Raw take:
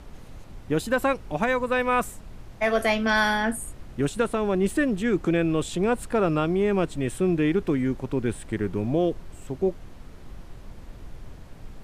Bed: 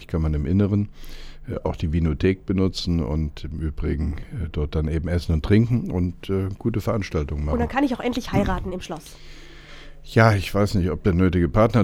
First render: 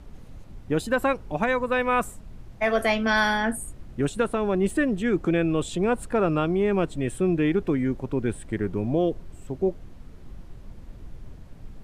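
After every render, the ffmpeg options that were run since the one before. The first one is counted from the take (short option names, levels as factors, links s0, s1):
-af "afftdn=nr=6:nf=-44"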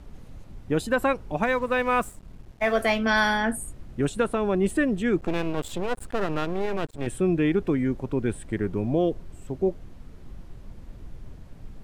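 -filter_complex "[0:a]asettb=1/sr,asplit=3[s0][s1][s2];[s0]atrim=end=1.434[s3];[s1]atrim=start=1.43:end=2.99,asetpts=PTS-STARTPTS,afade=t=in:d=0.004:c=qsin,afade=t=out:st=1.556:d=0.004:c=qsin,aeval=exprs='sgn(val(0))*max(abs(val(0))-0.00398,0)':c=same[s4];[s2]atrim=start=2.986[s5];[s3][s4]acrossfade=d=0.004:c1=hsin:c2=qsin[s6];[s6][s5]acrossfade=d=0.004:c1=qsin:c2=hsin,asettb=1/sr,asplit=3[s7][s8][s9];[s7]atrim=end=5.184[s10];[s8]atrim=start=5.18:end=7.07,asetpts=PTS-STARTPTS,afade=t=in:d=0.004:c=qsin,afade=t=out:st=1.886:d=0.004:c=qsin,aeval=exprs='max(val(0),0)':c=same[s11];[s9]atrim=start=7.066[s12];[s10][s11]acrossfade=d=0.004:c1=hsin:c2=qsin[s13];[s13][s12]acrossfade=d=0.004:c1=qsin:c2=hsin"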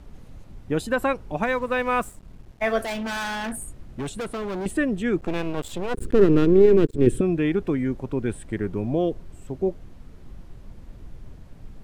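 -filter_complex "[0:a]asettb=1/sr,asplit=3[s0][s1][s2];[s0]atrim=end=2.844[s3];[s1]atrim=start=2.84:end=4.66,asetpts=PTS-STARTPTS,afade=t=in:d=0.004:c=qsin,afade=t=out:st=1.816:d=0.004:c=qsin,asoftclip=type=hard:threshold=0.0447[s4];[s2]atrim=start=4.656[s5];[s3][s4]acrossfade=d=0.004:c1=hsin:c2=qsin[s6];[s6][s5]acrossfade=d=0.004:c1=qsin:c2=hsin,asettb=1/sr,asplit=3[s7][s8][s9];[s7]atrim=end=5.944[s10];[s8]atrim=start=5.94:end=7.21,asetpts=PTS-STARTPTS,afade=t=in:d=0.004:c=qsin,afade=t=out:st=1.266:d=0.004:c=qsin,lowshelf=f=530:t=q:w=3:g=9.5[s11];[s9]atrim=start=7.206[s12];[s10][s11]acrossfade=d=0.004:c1=hsin:c2=qsin[s13];[s13][s12]acrossfade=d=0.004:c1=qsin:c2=hsin"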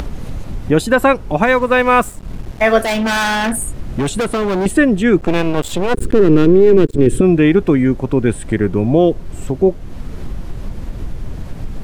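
-af "acompressor=mode=upward:threshold=0.0501:ratio=2.5,alimiter=level_in=3.76:limit=0.891:release=50:level=0:latency=1"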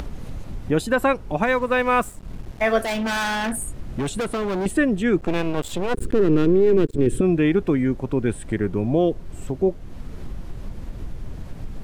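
-af "volume=0.422"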